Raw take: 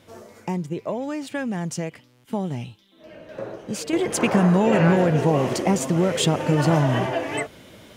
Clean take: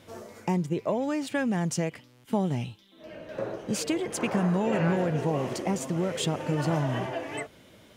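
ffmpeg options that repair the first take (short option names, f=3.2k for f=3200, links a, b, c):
-af "asetnsamples=n=441:p=0,asendcmd='3.93 volume volume -8dB',volume=0dB"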